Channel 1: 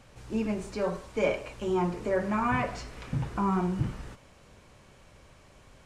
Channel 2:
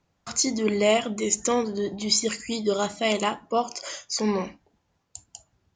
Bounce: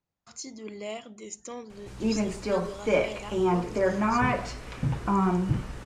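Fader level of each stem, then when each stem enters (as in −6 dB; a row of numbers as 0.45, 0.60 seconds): +3.0, −16.0 decibels; 1.70, 0.00 seconds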